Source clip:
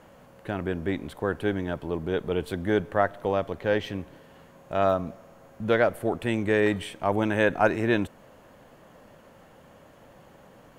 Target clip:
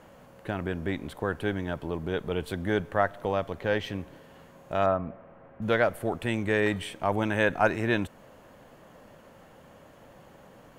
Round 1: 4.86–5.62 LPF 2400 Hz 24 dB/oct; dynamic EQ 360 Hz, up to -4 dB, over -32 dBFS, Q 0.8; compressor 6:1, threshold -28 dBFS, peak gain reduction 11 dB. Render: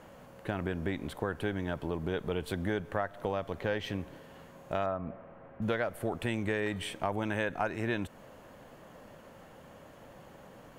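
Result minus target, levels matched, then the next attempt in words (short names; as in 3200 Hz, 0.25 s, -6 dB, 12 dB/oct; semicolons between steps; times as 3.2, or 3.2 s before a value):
compressor: peak gain reduction +11 dB
4.86–5.62 LPF 2400 Hz 24 dB/oct; dynamic EQ 360 Hz, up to -4 dB, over -32 dBFS, Q 0.8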